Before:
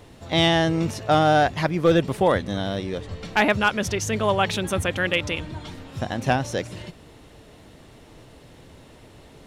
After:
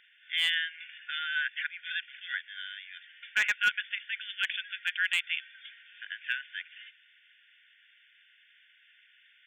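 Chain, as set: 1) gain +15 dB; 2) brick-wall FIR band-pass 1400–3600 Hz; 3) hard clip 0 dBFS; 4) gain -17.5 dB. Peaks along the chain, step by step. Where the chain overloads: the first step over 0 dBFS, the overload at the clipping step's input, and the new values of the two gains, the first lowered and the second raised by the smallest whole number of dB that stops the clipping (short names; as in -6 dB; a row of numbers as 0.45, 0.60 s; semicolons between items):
+5.5, +5.5, 0.0, -17.5 dBFS; step 1, 5.5 dB; step 1 +9 dB, step 4 -11.5 dB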